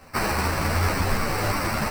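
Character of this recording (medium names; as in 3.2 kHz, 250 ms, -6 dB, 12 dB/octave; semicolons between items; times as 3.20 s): aliases and images of a low sample rate 3.4 kHz, jitter 0%; a shimmering, thickened sound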